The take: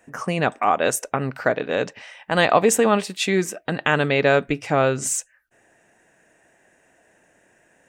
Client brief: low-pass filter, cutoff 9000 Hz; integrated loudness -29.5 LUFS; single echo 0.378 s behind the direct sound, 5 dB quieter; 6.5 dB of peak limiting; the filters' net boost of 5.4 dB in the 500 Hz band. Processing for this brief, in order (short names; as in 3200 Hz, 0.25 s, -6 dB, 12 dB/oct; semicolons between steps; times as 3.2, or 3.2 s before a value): LPF 9000 Hz; bell 500 Hz +6.5 dB; limiter -6 dBFS; echo 0.378 s -5 dB; gain -11.5 dB